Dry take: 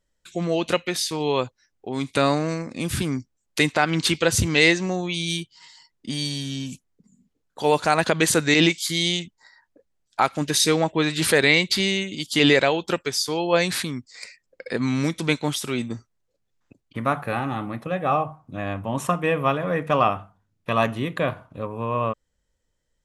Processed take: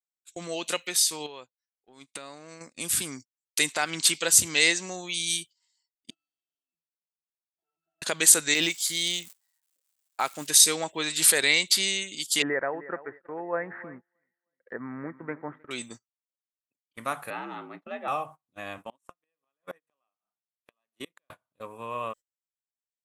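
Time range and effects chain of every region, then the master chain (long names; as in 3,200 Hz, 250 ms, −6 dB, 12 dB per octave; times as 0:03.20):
0:01.26–0:02.61: high-shelf EQ 5,300 Hz −11 dB + downward compressor, threshold −29 dBFS
0:06.10–0:08.02: Butterworth high-pass 170 Hz 96 dB per octave + tube saturation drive 31 dB, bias 0.6 + resonances in every octave E, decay 0.27 s
0:08.53–0:10.46: high-shelf EQ 4,600 Hz −7 dB + surface crackle 540 per second −40 dBFS
0:12.42–0:15.71: Chebyshev low-pass filter 1,900 Hz, order 6 + repeating echo 311 ms, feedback 37%, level −16.5 dB
0:17.30–0:18.08: frequency shifter +61 Hz + high-frequency loss of the air 260 metres + one half of a high-frequency compander decoder only
0:18.78–0:21.30: high-pass filter 230 Hz + low-shelf EQ 310 Hz +3.5 dB + gate with flip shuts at −16 dBFS, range −30 dB
whole clip: RIAA equalisation recording; noise gate −36 dBFS, range −27 dB; parametric band 7,900 Hz +5.5 dB 0.37 octaves; level −7.5 dB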